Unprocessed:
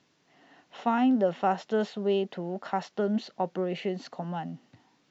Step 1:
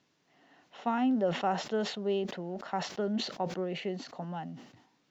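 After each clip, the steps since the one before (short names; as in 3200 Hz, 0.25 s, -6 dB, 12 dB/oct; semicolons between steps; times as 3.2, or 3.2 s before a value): sustainer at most 91 dB/s; gain -4.5 dB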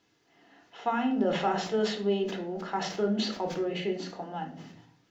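reverb RT60 0.50 s, pre-delay 3 ms, DRR 1.5 dB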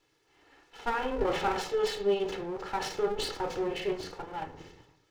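minimum comb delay 2.3 ms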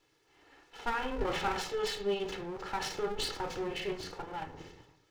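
dynamic EQ 500 Hz, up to -6 dB, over -41 dBFS, Q 0.73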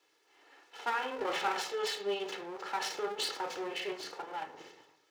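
HPF 410 Hz 12 dB/oct; gain +1 dB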